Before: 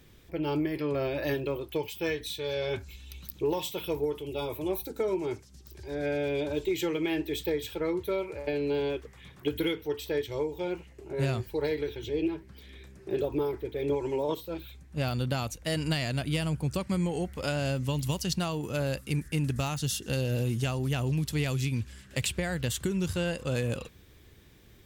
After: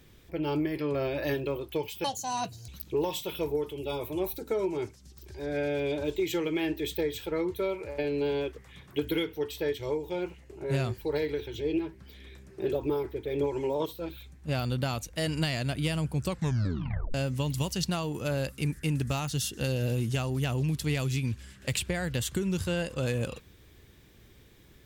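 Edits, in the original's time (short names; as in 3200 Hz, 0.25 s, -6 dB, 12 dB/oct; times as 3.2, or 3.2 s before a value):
2.04–3.17 speed 176%
16.77 tape stop 0.86 s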